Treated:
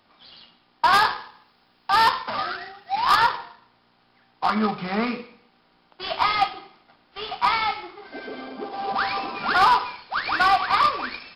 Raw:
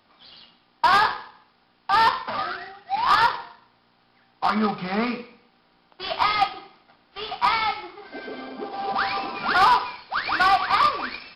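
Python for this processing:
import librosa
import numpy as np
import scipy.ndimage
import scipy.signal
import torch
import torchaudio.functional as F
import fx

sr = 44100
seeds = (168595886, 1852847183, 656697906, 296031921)

y = fx.high_shelf(x, sr, hz=6900.0, db=11.5, at=(0.93, 3.17))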